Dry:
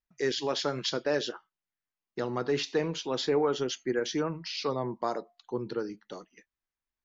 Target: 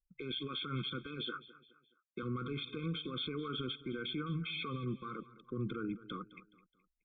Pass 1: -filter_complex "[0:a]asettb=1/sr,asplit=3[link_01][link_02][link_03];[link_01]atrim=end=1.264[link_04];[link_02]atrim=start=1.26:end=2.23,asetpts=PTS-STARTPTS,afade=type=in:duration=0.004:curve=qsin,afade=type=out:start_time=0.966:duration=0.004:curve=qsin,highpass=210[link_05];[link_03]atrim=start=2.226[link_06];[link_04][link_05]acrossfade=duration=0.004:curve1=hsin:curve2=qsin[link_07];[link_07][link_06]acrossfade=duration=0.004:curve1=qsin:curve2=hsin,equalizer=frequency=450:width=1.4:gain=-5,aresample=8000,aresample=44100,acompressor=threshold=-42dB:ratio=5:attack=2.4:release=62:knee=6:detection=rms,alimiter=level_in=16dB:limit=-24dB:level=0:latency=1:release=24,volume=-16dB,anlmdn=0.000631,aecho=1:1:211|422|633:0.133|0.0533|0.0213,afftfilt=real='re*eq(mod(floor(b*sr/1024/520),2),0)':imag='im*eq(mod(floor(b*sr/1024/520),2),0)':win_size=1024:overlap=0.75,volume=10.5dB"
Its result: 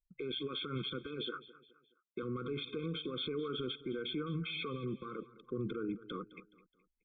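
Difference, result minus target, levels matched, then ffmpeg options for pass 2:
500 Hz band +4.0 dB
-filter_complex "[0:a]asettb=1/sr,asplit=3[link_01][link_02][link_03];[link_01]atrim=end=1.264[link_04];[link_02]atrim=start=1.26:end=2.23,asetpts=PTS-STARTPTS,afade=type=in:duration=0.004:curve=qsin,afade=type=out:start_time=0.966:duration=0.004:curve=qsin,highpass=210[link_05];[link_03]atrim=start=2.226[link_06];[link_04][link_05]acrossfade=duration=0.004:curve1=hsin:curve2=qsin[link_07];[link_07][link_06]acrossfade=duration=0.004:curve1=qsin:curve2=hsin,equalizer=frequency=450:width=1.4:gain=-14.5,aresample=8000,aresample=44100,acompressor=threshold=-42dB:ratio=5:attack=2.4:release=62:knee=6:detection=rms,alimiter=level_in=16dB:limit=-24dB:level=0:latency=1:release=24,volume=-16dB,anlmdn=0.000631,aecho=1:1:211|422|633:0.133|0.0533|0.0213,afftfilt=real='re*eq(mod(floor(b*sr/1024/520),2),0)':imag='im*eq(mod(floor(b*sr/1024/520),2),0)':win_size=1024:overlap=0.75,volume=10.5dB"

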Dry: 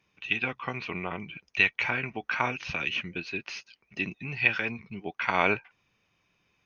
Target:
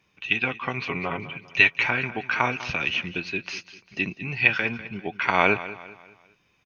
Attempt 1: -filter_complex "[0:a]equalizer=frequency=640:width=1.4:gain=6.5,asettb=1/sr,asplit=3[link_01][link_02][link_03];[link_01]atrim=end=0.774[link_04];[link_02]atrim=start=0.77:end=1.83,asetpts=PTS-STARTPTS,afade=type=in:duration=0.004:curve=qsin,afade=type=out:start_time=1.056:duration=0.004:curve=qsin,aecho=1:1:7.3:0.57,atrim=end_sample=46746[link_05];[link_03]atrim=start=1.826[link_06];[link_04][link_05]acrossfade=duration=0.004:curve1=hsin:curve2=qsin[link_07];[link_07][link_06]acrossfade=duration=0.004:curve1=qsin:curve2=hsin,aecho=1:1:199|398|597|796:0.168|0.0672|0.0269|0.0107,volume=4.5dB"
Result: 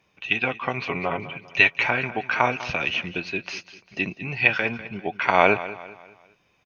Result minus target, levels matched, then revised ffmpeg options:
500 Hz band +3.5 dB
-filter_complex "[0:a]asettb=1/sr,asplit=3[link_01][link_02][link_03];[link_01]atrim=end=0.774[link_04];[link_02]atrim=start=0.77:end=1.83,asetpts=PTS-STARTPTS,afade=type=in:duration=0.004:curve=qsin,afade=type=out:start_time=1.056:duration=0.004:curve=qsin,aecho=1:1:7.3:0.57,atrim=end_sample=46746[link_05];[link_03]atrim=start=1.826[link_06];[link_04][link_05]acrossfade=duration=0.004:curve1=hsin:curve2=qsin[link_07];[link_07][link_06]acrossfade=duration=0.004:curve1=qsin:curve2=hsin,aecho=1:1:199|398|597|796:0.168|0.0672|0.0269|0.0107,volume=4.5dB"

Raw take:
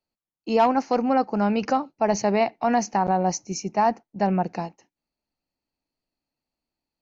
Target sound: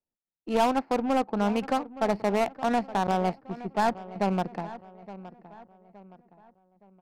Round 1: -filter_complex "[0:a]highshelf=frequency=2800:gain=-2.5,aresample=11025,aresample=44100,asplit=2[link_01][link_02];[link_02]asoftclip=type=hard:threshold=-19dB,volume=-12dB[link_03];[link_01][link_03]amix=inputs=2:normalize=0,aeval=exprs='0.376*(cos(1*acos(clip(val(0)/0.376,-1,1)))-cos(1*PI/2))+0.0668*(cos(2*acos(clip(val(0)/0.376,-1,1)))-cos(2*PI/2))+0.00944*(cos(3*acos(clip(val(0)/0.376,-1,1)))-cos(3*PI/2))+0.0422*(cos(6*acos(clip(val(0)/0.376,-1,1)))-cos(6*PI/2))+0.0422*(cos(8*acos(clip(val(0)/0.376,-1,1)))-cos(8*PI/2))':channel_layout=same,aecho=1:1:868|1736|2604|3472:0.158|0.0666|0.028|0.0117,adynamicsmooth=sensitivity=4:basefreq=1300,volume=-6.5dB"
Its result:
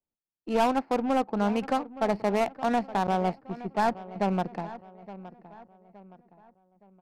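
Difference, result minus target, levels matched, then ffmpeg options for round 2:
hard clipping: distortion +20 dB
-filter_complex "[0:a]highshelf=frequency=2800:gain=-2.5,aresample=11025,aresample=44100,asplit=2[link_01][link_02];[link_02]asoftclip=type=hard:threshold=-12dB,volume=-12dB[link_03];[link_01][link_03]amix=inputs=2:normalize=0,aeval=exprs='0.376*(cos(1*acos(clip(val(0)/0.376,-1,1)))-cos(1*PI/2))+0.0668*(cos(2*acos(clip(val(0)/0.376,-1,1)))-cos(2*PI/2))+0.00944*(cos(3*acos(clip(val(0)/0.376,-1,1)))-cos(3*PI/2))+0.0422*(cos(6*acos(clip(val(0)/0.376,-1,1)))-cos(6*PI/2))+0.0422*(cos(8*acos(clip(val(0)/0.376,-1,1)))-cos(8*PI/2))':channel_layout=same,aecho=1:1:868|1736|2604|3472:0.158|0.0666|0.028|0.0117,adynamicsmooth=sensitivity=4:basefreq=1300,volume=-6.5dB"

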